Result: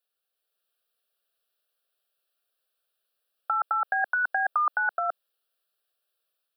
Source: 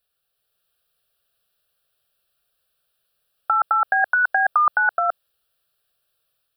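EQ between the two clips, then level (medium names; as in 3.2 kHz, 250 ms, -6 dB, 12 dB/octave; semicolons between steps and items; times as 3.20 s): Chebyshev high-pass 310 Hz, order 2; -6.5 dB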